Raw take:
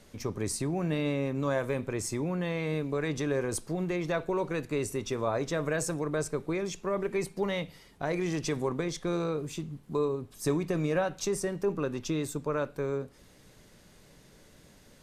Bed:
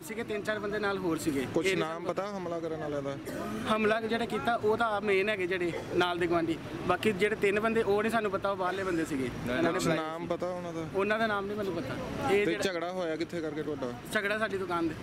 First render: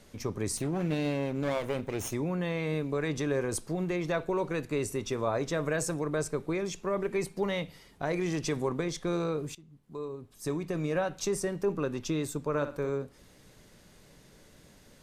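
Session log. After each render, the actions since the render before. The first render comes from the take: 0.57–2.14 s: comb filter that takes the minimum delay 0.31 ms; 9.55–11.28 s: fade in, from -20.5 dB; 12.48–12.89 s: flutter echo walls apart 10.5 m, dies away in 0.35 s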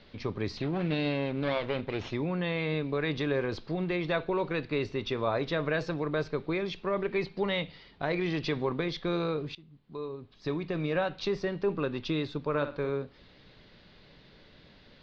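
steep low-pass 4.4 kHz 48 dB/octave; treble shelf 2.8 kHz +9.5 dB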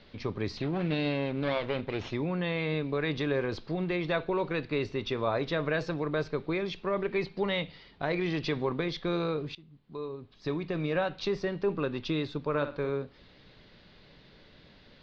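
no audible change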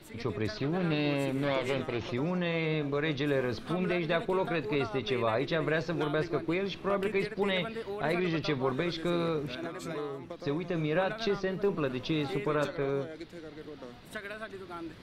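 add bed -10.5 dB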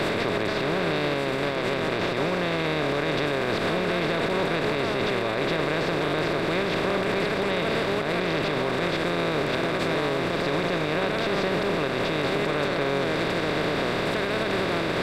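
spectral levelling over time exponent 0.2; peak limiter -16 dBFS, peak gain reduction 10 dB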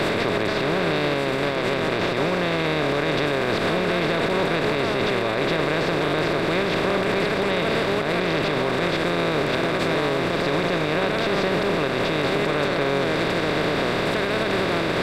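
trim +3 dB

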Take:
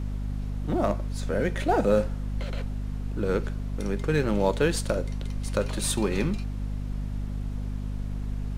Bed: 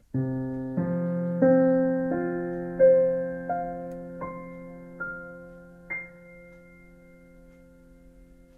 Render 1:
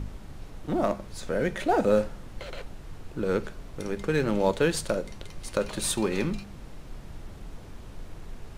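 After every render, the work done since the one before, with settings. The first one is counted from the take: de-hum 50 Hz, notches 5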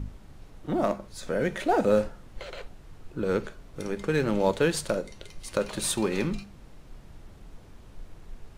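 noise print and reduce 6 dB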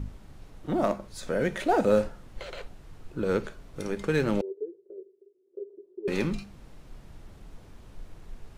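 4.41–6.08 s: Butterworth band-pass 390 Hz, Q 7.7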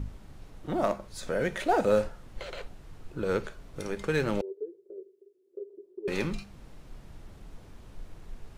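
dynamic bell 240 Hz, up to -5 dB, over -42 dBFS, Q 1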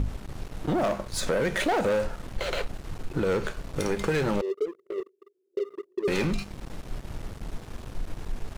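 waveshaping leveller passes 3; compression, threshold -23 dBFS, peak gain reduction 7 dB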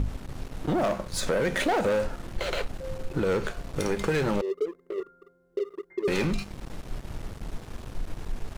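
add bed -22 dB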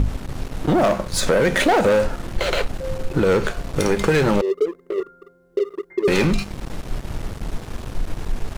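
trim +8.5 dB

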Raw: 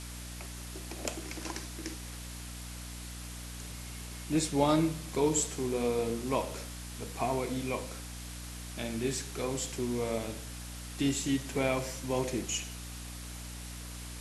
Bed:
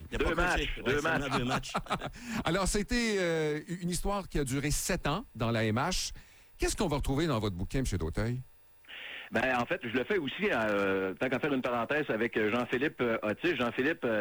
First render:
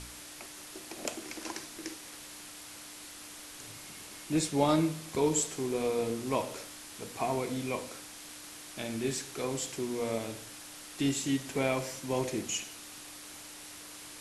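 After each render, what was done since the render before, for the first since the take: de-hum 60 Hz, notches 4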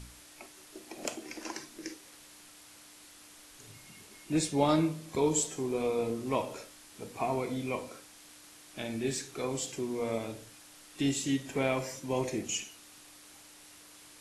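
noise print and reduce 7 dB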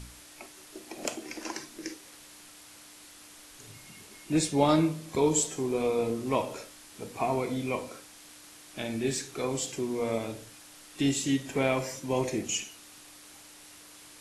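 trim +3 dB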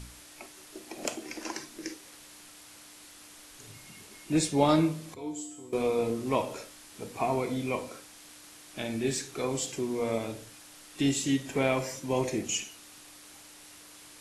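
5.14–5.73 s: feedback comb 100 Hz, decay 0.72 s, harmonics odd, mix 90%

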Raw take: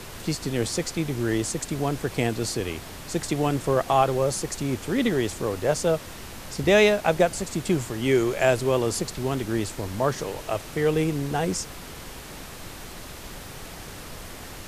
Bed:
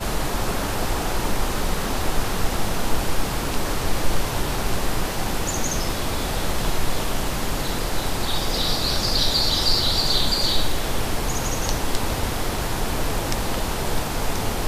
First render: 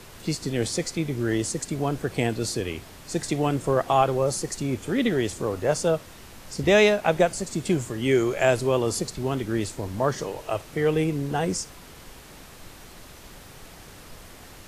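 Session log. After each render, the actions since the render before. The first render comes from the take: noise print and reduce 6 dB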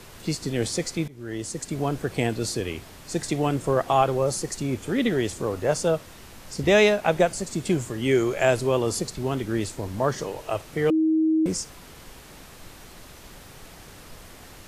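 1.08–1.79 s: fade in, from -22 dB; 10.90–11.46 s: bleep 317 Hz -17.5 dBFS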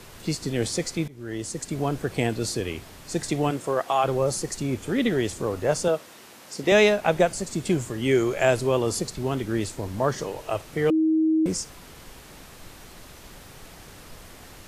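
3.50–4.03 s: high-pass 250 Hz -> 790 Hz 6 dB/octave; 5.88–6.72 s: high-pass 240 Hz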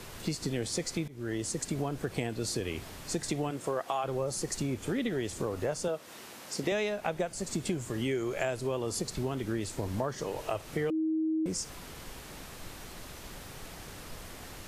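compression 6:1, threshold -29 dBFS, peak gain reduction 14.5 dB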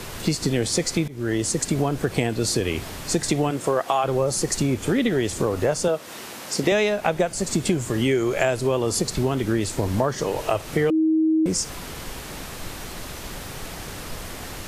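trim +10.5 dB

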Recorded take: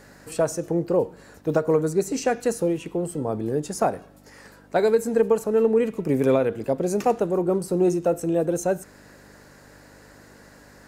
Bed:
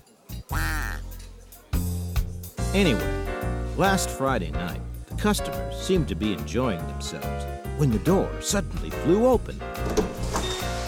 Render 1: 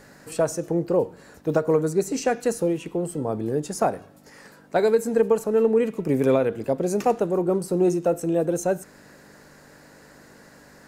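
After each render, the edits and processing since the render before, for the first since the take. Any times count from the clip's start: de-hum 50 Hz, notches 2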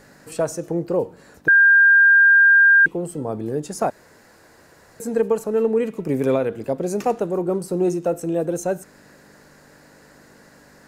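1.48–2.86 s: bleep 1.6 kHz -9 dBFS; 3.90–5.00 s: room tone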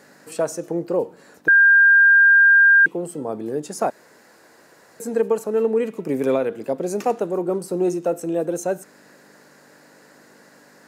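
high-pass 200 Hz 12 dB/octave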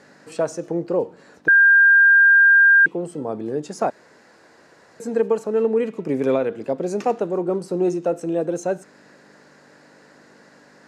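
low-pass 6.2 kHz 12 dB/octave; bass shelf 84 Hz +7 dB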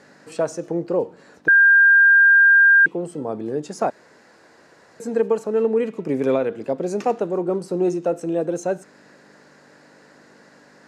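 no audible change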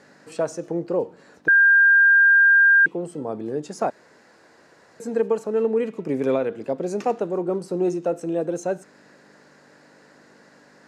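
trim -2 dB

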